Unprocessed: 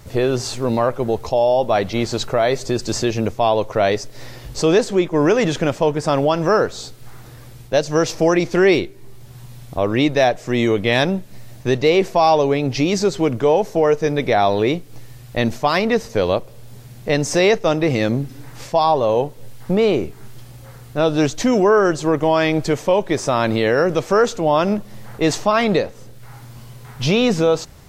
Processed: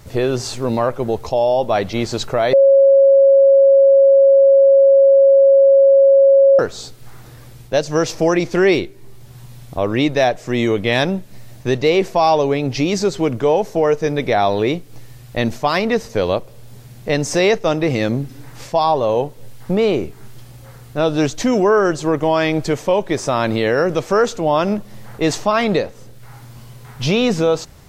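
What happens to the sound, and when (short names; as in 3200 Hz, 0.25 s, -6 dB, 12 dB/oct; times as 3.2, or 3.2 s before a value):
2.53–6.59 bleep 548 Hz -6.5 dBFS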